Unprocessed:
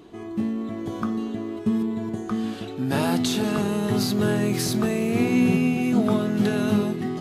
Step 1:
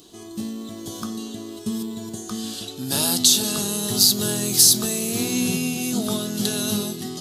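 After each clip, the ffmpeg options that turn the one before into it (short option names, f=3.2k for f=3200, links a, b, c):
-af "aexciter=amount=9.7:drive=4.6:freq=3.3k,volume=-4.5dB"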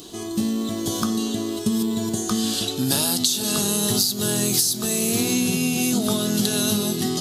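-af "acompressor=threshold=-26dB:ratio=16,volume=8.5dB"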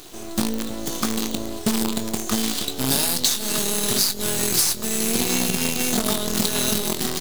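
-filter_complex "[0:a]highpass=120,acrusher=bits=4:dc=4:mix=0:aa=0.000001,asplit=2[a][b];[b]adelay=22,volume=-11dB[c];[a][c]amix=inputs=2:normalize=0"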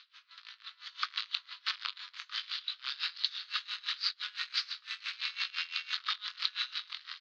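-af "dynaudnorm=f=330:g=5:m=11.5dB,asuperpass=centerf=2400:order=12:qfactor=0.69,aeval=exprs='val(0)*pow(10,-22*(0.5-0.5*cos(2*PI*5.9*n/s))/20)':c=same,volume=-6dB"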